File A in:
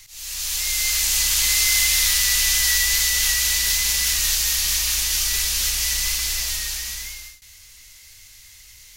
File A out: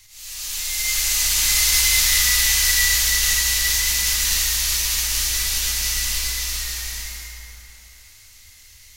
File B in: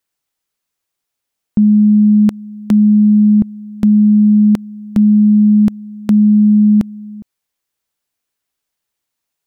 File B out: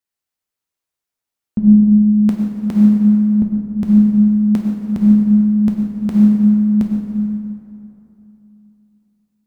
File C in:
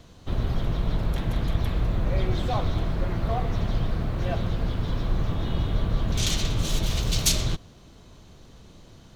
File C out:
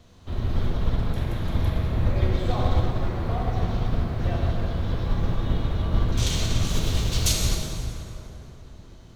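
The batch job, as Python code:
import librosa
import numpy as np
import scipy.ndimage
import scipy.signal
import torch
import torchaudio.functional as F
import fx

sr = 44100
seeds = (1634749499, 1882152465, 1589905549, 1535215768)

y = fx.peak_eq(x, sr, hz=78.0, db=6.0, octaves=0.26)
y = fx.rev_plate(y, sr, seeds[0], rt60_s=3.4, hf_ratio=0.55, predelay_ms=0, drr_db=-3.0)
y = fx.upward_expand(y, sr, threshold_db=-20.0, expansion=1.5)
y = y * 10.0 ** (-2.0 / 20.0)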